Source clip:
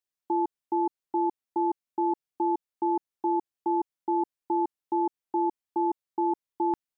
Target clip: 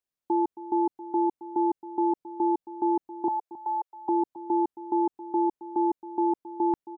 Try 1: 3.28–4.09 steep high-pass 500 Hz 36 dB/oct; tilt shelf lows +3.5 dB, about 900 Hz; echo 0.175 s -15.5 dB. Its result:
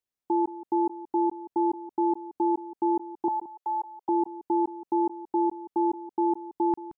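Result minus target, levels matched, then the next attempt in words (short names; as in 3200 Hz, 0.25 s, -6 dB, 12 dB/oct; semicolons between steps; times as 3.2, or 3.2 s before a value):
echo 95 ms early
3.28–4.09 steep high-pass 500 Hz 36 dB/oct; tilt shelf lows +3.5 dB, about 900 Hz; echo 0.27 s -15.5 dB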